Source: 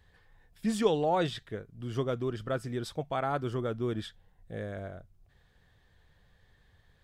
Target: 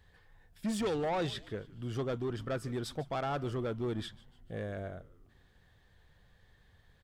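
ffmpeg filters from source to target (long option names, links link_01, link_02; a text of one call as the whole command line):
ffmpeg -i in.wav -filter_complex "[0:a]asoftclip=type=tanh:threshold=-28.5dB,asplit=5[link_01][link_02][link_03][link_04][link_05];[link_02]adelay=148,afreqshift=-120,volume=-20dB[link_06];[link_03]adelay=296,afreqshift=-240,volume=-26.4dB[link_07];[link_04]adelay=444,afreqshift=-360,volume=-32.8dB[link_08];[link_05]adelay=592,afreqshift=-480,volume=-39.1dB[link_09];[link_01][link_06][link_07][link_08][link_09]amix=inputs=5:normalize=0" out.wav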